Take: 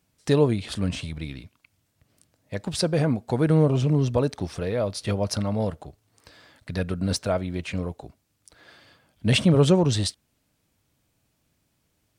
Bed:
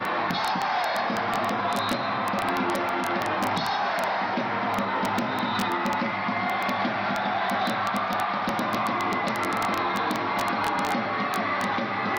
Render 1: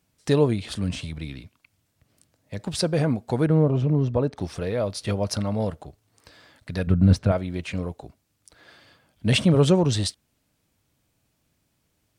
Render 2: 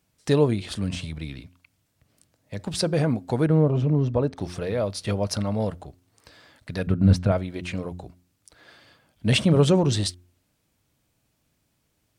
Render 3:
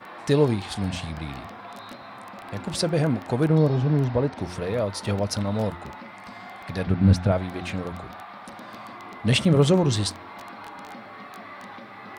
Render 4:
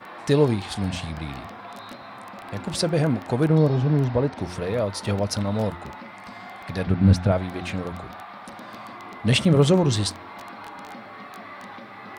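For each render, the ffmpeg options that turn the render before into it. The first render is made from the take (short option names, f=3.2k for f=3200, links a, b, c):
-filter_complex "[0:a]asettb=1/sr,asplit=3[a][b][c];[a]atrim=end=0.644[d];[b]atrim=start=0.64:end=2.59,asetpts=PTS-STARTPTS,afade=t=in:d=0.004:c=qsin,afade=t=out:st=1.946:d=0.004:c=qsin,acrossover=split=300|3000[e][f][g];[f]acompressor=threshold=-38dB:ratio=2.5:attack=3.2:release=140:knee=2.83:detection=peak[h];[e][h][g]amix=inputs=3:normalize=0[i];[c]atrim=start=2.586[j];[d][i]acrossfade=d=0.004:c1=hsin:c2=qsin[k];[k][j]acrossfade=d=0.004:c1=qsin:c2=hsin,asettb=1/sr,asplit=3[l][m][n];[l]atrim=end=3.464[o];[m]atrim=start=3.46:end=4.37,asetpts=PTS-STARTPTS,afade=t=in:d=0.004:c=qsin,afade=t=out:st=0.906:d=0.004:c=qsin,lowpass=f=1.3k:p=1[p];[n]atrim=start=4.366[q];[o][p]acrossfade=d=0.004:c1=hsin:c2=qsin[r];[r][q]acrossfade=d=0.004:c1=qsin:c2=hsin,asettb=1/sr,asplit=3[s][t][u];[s]atrim=end=6.874[v];[t]atrim=start=6.87:end=7.32,asetpts=PTS-STARTPTS,afade=t=in:d=0.004:c=qsin,afade=t=out:st=0.446:d=0.004:c=qsin,bass=f=250:g=12,treble=f=4k:g=-11[w];[u]atrim=start=7.316[x];[v][w]acrossfade=d=0.004:c1=hsin:c2=qsin[y];[y][x]acrossfade=d=0.004:c1=qsin:c2=hsin"
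-af "bandreject=f=89.14:t=h:w=4,bandreject=f=178.28:t=h:w=4,bandreject=f=267.42:t=h:w=4,bandreject=f=356.56:t=h:w=4"
-filter_complex "[1:a]volume=-14.5dB[a];[0:a][a]amix=inputs=2:normalize=0"
-af "volume=1dB"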